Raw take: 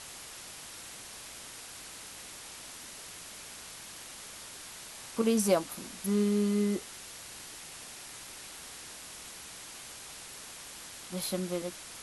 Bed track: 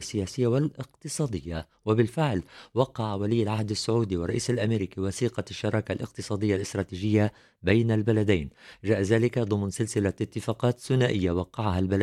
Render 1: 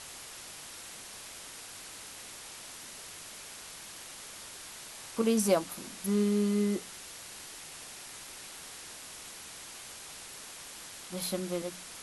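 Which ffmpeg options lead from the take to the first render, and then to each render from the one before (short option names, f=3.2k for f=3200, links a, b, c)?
-af "bandreject=f=60:t=h:w=4,bandreject=f=120:t=h:w=4,bandreject=f=180:t=h:w=4,bandreject=f=240:t=h:w=4,bandreject=f=300:t=h:w=4"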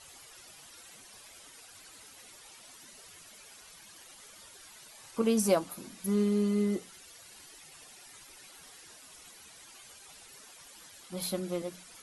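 -af "afftdn=nr=12:nf=-47"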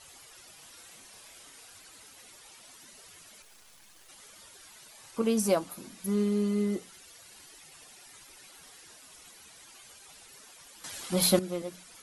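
-filter_complex "[0:a]asettb=1/sr,asplit=3[a][b][c];[a]atrim=end=0.584[d];[b]atrim=start=0.58:end=1.78,asetpts=PTS-STARTPTS,afade=t=in:d=0.004:c=qsin,afade=t=out:st=1.196:d=0.004:c=qsin,asplit=2[e][f];[f]adelay=33,volume=-7dB[g];[e][g]amix=inputs=2:normalize=0,atrim=end_sample=52920[h];[c]atrim=start=1.776[i];[d][h]acrossfade=d=0.004:c1=hsin:c2=qsin[j];[j][i]acrossfade=d=0.004:c1=qsin:c2=hsin,asettb=1/sr,asplit=3[k][l][m];[k]atrim=end=3.424[n];[l]atrim=start=3.42:end=4.09,asetpts=PTS-STARTPTS,afade=t=in:d=0.004:c=qsin,afade=t=out:st=0.666:d=0.004:c=qsin,aeval=exprs='max(val(0),0)':c=same[o];[m]atrim=start=4.086[p];[n][o]acrossfade=d=0.004:c1=hsin:c2=qsin[q];[q][p]acrossfade=d=0.004:c1=qsin:c2=hsin,asplit=3[r][s][t];[r]atrim=end=10.842[u];[s]atrim=start=10.838:end=11.392,asetpts=PTS-STARTPTS,volume=11dB[v];[t]atrim=start=11.388[w];[u][v]acrossfade=d=0.004:c1=hsin:c2=hsin[x];[x][w]acrossfade=d=0.004:c1=hsin:c2=hsin"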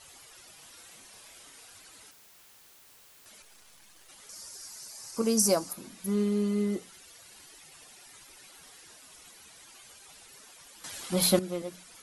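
-filter_complex "[0:a]asettb=1/sr,asplit=3[a][b][c];[a]atrim=end=2.114[d];[b]atrim=start=2.11:end=3.26,asetpts=PTS-STARTPTS,afade=t=in:d=0.004:c=qsin,afade=t=out:st=1.146:d=0.004:c=qsin,aeval=exprs='(mod(398*val(0)+1,2)-1)/398':c=same[e];[c]atrim=start=3.256[f];[d][e]acrossfade=d=0.004:c1=hsin:c2=qsin[g];[g][f]acrossfade=d=0.004:c1=qsin:c2=hsin,asettb=1/sr,asplit=3[h][i][j];[h]atrim=end=4.294[k];[i]atrim=start=4.29:end=5.73,asetpts=PTS-STARTPTS,afade=t=in:d=0.004:c=qsin,afade=t=out:st=1.436:d=0.004:c=qsin,highshelf=f=4.2k:t=q:w=3:g=6.5[l];[j]atrim=start=5.726[m];[k][l]acrossfade=d=0.004:c1=hsin:c2=qsin[n];[n][m]acrossfade=d=0.004:c1=qsin:c2=hsin"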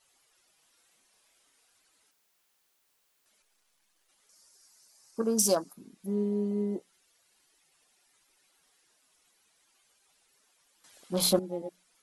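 -af "afwtdn=0.0141,equalizer=f=86:t=o:w=1.8:g=-8.5"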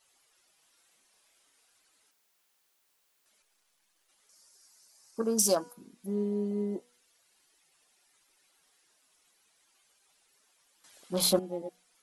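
-af "lowshelf=f=230:g=-3.5,bandreject=f=243.1:t=h:w=4,bandreject=f=486.2:t=h:w=4,bandreject=f=729.3:t=h:w=4,bandreject=f=972.4:t=h:w=4,bandreject=f=1.2155k:t=h:w=4,bandreject=f=1.4586k:t=h:w=4,bandreject=f=1.7017k:t=h:w=4,bandreject=f=1.9448k:t=h:w=4,bandreject=f=2.1879k:t=h:w=4,bandreject=f=2.431k:t=h:w=4,bandreject=f=2.6741k:t=h:w=4,bandreject=f=2.9172k:t=h:w=4,bandreject=f=3.1603k:t=h:w=4"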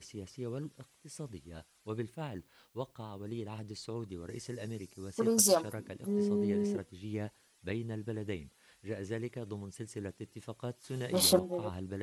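-filter_complex "[1:a]volume=-15.5dB[a];[0:a][a]amix=inputs=2:normalize=0"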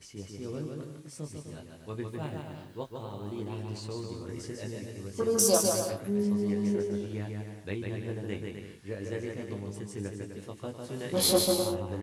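-filter_complex "[0:a]asplit=2[a][b];[b]adelay=20,volume=-5dB[c];[a][c]amix=inputs=2:normalize=0,aecho=1:1:150|255|328.5|380|416:0.631|0.398|0.251|0.158|0.1"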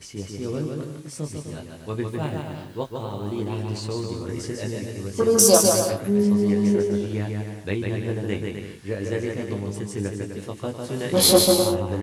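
-af "volume=9dB"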